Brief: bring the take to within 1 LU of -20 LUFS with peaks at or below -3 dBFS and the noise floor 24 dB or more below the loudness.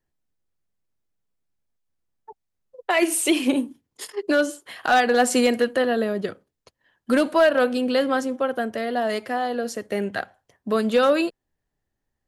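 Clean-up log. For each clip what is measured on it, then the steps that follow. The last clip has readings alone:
clipped 0.2%; flat tops at -11.0 dBFS; loudness -22.5 LUFS; peak -11.0 dBFS; loudness target -20.0 LUFS
-> clip repair -11 dBFS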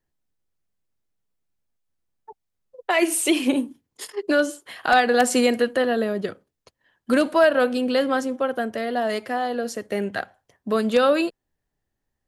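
clipped 0.0%; loudness -22.0 LUFS; peak -4.0 dBFS; loudness target -20.0 LUFS
-> gain +2 dB; limiter -3 dBFS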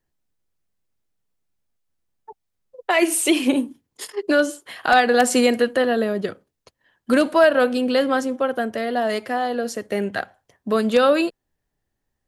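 loudness -20.0 LUFS; peak -3.0 dBFS; noise floor -79 dBFS

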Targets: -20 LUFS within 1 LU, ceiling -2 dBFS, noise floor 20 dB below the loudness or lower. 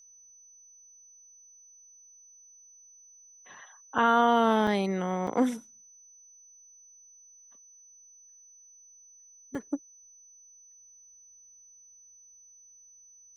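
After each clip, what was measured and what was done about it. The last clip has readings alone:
dropouts 4; longest dropout 3.4 ms; steady tone 6000 Hz; tone level -53 dBFS; loudness -27.0 LUFS; peak -11.5 dBFS; loudness target -20.0 LUFS
-> interpolate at 3.98/4.67/5.27/9.55, 3.4 ms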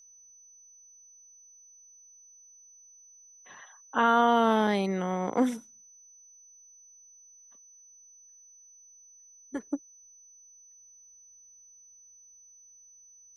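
dropouts 0; steady tone 6000 Hz; tone level -53 dBFS
-> notch 6000 Hz, Q 30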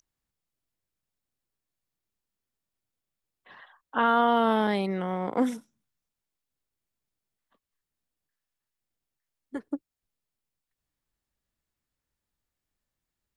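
steady tone none; loudness -26.0 LUFS; peak -11.0 dBFS; loudness target -20.0 LUFS
-> gain +6 dB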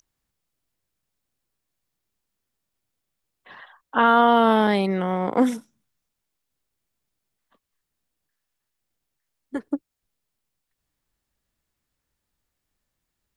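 loudness -20.0 LUFS; peak -5.0 dBFS; noise floor -82 dBFS

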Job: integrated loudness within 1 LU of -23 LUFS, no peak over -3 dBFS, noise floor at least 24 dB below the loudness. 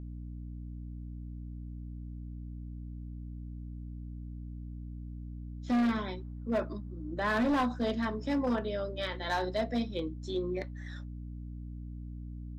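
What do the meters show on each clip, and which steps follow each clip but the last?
clipped 1.6%; flat tops at -24.5 dBFS; hum 60 Hz; harmonics up to 300 Hz; hum level -39 dBFS; loudness -36.0 LUFS; peak -24.5 dBFS; loudness target -23.0 LUFS
-> clip repair -24.5 dBFS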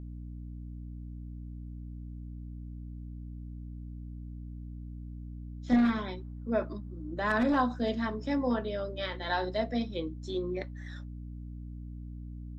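clipped 0.0%; hum 60 Hz; harmonics up to 300 Hz; hum level -39 dBFS
-> de-hum 60 Hz, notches 5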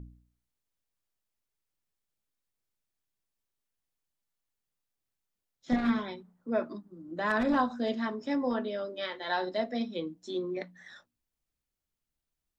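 hum none; loudness -32.0 LUFS; peak -15.5 dBFS; loudness target -23.0 LUFS
-> gain +9 dB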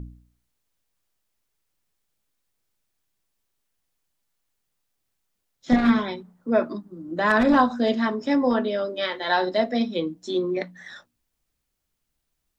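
loudness -23.0 LUFS; peak -6.5 dBFS; noise floor -78 dBFS

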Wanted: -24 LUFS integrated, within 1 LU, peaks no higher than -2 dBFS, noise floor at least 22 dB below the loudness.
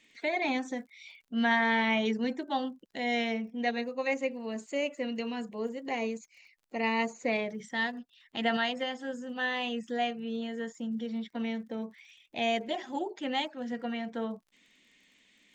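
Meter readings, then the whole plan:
ticks 30/s; loudness -32.5 LUFS; peak -15.5 dBFS; loudness target -24.0 LUFS
-> de-click; gain +8.5 dB

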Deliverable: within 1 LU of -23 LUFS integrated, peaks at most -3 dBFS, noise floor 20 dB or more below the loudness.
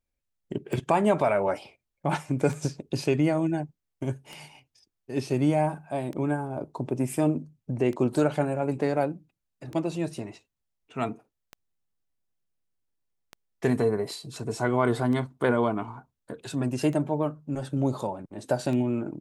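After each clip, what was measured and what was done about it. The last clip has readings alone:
clicks 11; loudness -28.0 LUFS; peak -10.5 dBFS; loudness target -23.0 LUFS
-> de-click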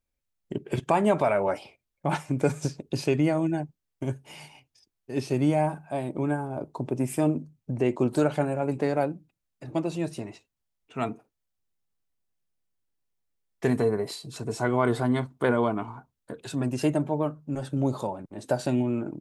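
clicks 0; loudness -28.0 LUFS; peak -10.5 dBFS; loudness target -23.0 LUFS
-> gain +5 dB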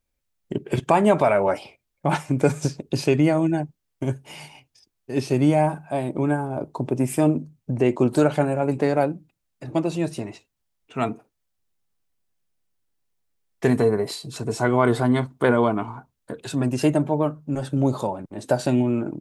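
loudness -23.0 LUFS; peak -5.5 dBFS; noise floor -77 dBFS

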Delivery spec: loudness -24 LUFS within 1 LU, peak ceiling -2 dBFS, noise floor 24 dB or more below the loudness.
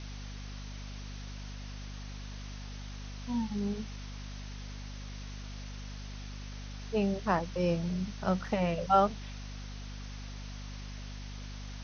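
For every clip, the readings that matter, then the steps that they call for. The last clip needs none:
hum 50 Hz; harmonics up to 250 Hz; hum level -40 dBFS; noise floor -42 dBFS; noise floor target -60 dBFS; loudness -36.0 LUFS; peak -12.5 dBFS; loudness target -24.0 LUFS
-> notches 50/100/150/200/250 Hz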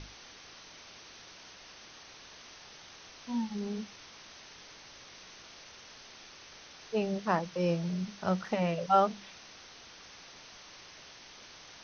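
hum none; noise floor -52 dBFS; noise floor target -56 dBFS
-> noise print and reduce 6 dB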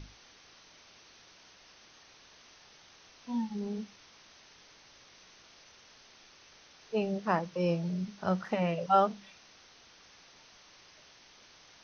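noise floor -58 dBFS; loudness -32.0 LUFS; peak -13.0 dBFS; loudness target -24.0 LUFS
-> gain +8 dB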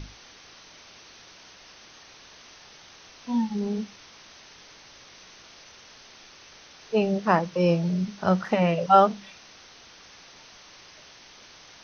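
loudness -24.0 LUFS; peak -5.0 dBFS; noise floor -50 dBFS

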